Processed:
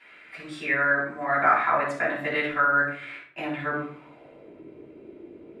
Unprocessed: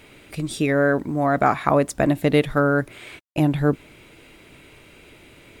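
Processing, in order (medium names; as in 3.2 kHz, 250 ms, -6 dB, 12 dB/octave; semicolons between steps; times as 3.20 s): simulated room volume 630 m³, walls furnished, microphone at 9.4 m; band-pass sweep 1.7 kHz -> 370 Hz, 3.71–4.61 s; trim -4.5 dB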